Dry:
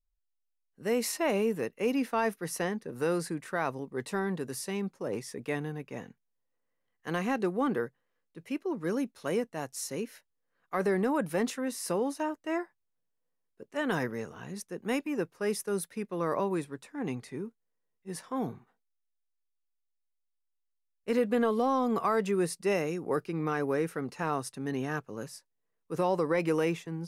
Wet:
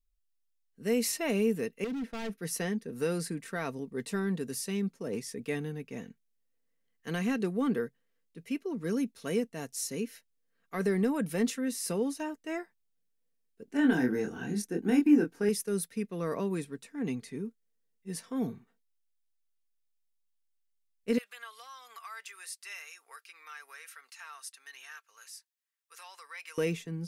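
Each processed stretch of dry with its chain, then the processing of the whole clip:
0:01.84–0:02.38: low-pass filter 1,200 Hz 6 dB per octave + hard clipping −34 dBFS
0:13.65–0:15.49: downward compressor 3 to 1, threshold −31 dBFS + double-tracking delay 24 ms −4 dB + hollow resonant body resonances 310/780/1,500 Hz, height 14 dB, ringing for 30 ms
0:21.18–0:26.58: high-pass filter 1,100 Hz 24 dB per octave + downward compressor 1.5 to 1, threshold −47 dBFS
whole clip: parametric band 910 Hz −10.5 dB 1.6 octaves; comb filter 4.4 ms, depth 38%; level +1.5 dB

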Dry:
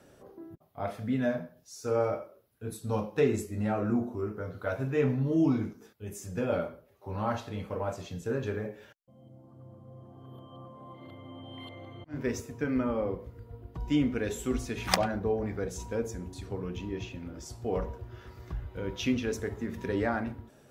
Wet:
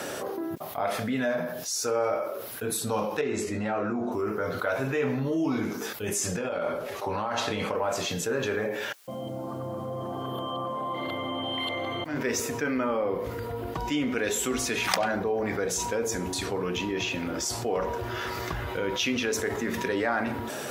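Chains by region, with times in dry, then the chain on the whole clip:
0:03.21–0:04.12: downward compressor 3 to 1, threshold −32 dBFS + high-frequency loss of the air 78 metres
0:06.08–0:07.76: low-pass filter 10,000 Hz + compressor whose output falls as the input rises −38 dBFS
whole clip: high-pass filter 700 Hz 6 dB per octave; envelope flattener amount 70%

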